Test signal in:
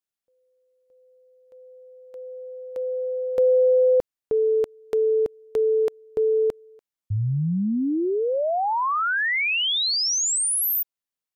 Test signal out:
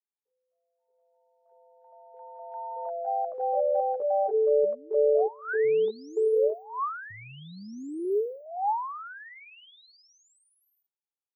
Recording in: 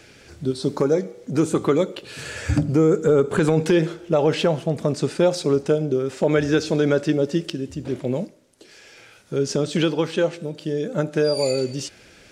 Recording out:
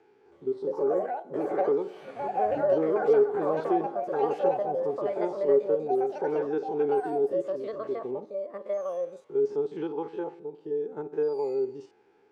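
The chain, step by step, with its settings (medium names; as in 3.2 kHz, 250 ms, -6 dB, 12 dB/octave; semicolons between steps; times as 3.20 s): spectrogram pixelated in time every 50 ms; two resonant band-passes 590 Hz, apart 1 oct; ever faster or slower copies 321 ms, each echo +5 st, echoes 2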